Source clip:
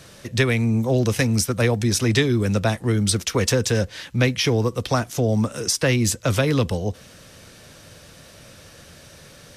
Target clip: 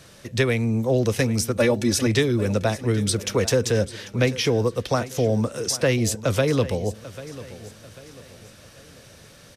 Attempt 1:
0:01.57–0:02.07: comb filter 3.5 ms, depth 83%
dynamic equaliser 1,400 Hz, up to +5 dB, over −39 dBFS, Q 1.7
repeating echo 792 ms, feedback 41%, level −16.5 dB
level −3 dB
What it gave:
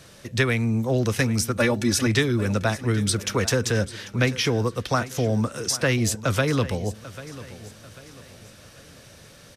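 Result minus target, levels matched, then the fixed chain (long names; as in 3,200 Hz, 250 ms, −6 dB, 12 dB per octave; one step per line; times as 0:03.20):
500 Hz band −3.0 dB
0:01.57–0:02.07: comb filter 3.5 ms, depth 83%
dynamic equaliser 500 Hz, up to +5 dB, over −39 dBFS, Q 1.7
repeating echo 792 ms, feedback 41%, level −16.5 dB
level −3 dB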